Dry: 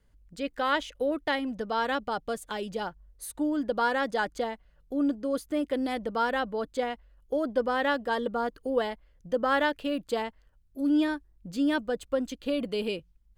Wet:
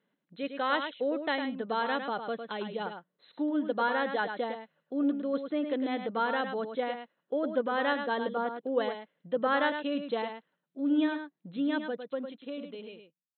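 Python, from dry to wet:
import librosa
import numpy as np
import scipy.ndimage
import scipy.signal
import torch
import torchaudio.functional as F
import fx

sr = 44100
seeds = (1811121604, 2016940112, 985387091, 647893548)

y = fx.fade_out_tail(x, sr, length_s=2.08)
y = fx.brickwall_bandpass(y, sr, low_hz=150.0, high_hz=4200.0)
y = y + 10.0 ** (-7.5 / 20.0) * np.pad(y, (int(105 * sr / 1000.0), 0))[:len(y)]
y = y * 10.0 ** (-2.5 / 20.0)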